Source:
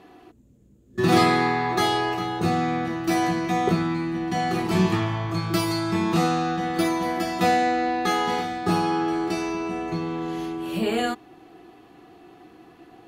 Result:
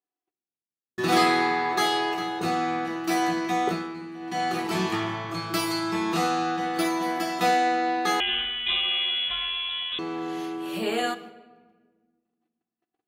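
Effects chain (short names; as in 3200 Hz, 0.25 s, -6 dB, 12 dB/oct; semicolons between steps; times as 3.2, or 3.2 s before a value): HPF 480 Hz 6 dB/oct; gate -46 dBFS, range -44 dB; 3.66–4.43 dip -9 dB, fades 0.26 s; shoebox room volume 1400 m³, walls mixed, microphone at 0.42 m; 8.2–9.99 inverted band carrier 3700 Hz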